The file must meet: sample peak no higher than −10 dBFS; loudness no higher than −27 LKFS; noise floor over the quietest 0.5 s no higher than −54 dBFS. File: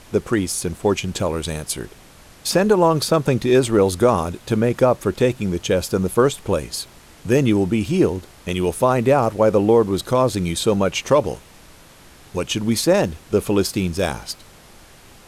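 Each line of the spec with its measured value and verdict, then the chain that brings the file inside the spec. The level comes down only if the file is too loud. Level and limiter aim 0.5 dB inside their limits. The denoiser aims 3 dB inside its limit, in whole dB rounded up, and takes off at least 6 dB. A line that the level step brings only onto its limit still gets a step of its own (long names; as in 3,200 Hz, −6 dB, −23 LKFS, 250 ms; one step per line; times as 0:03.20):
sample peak −4.5 dBFS: out of spec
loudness −19.5 LKFS: out of spec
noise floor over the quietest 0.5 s −46 dBFS: out of spec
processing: broadband denoise 6 dB, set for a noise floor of −46 dBFS
level −8 dB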